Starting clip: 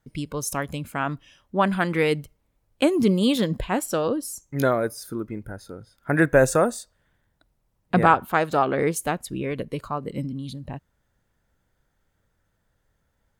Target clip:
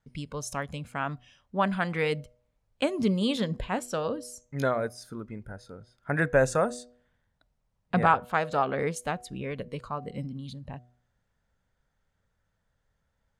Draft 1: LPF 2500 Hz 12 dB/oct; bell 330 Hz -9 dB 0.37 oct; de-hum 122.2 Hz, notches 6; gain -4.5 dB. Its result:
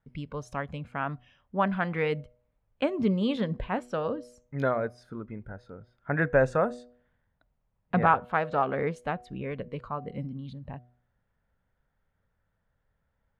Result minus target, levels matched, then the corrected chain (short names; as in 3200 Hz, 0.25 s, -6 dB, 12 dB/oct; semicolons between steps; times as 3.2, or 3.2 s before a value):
8000 Hz band -17.0 dB
LPF 7600 Hz 12 dB/oct; bell 330 Hz -9 dB 0.37 oct; de-hum 122.2 Hz, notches 6; gain -4.5 dB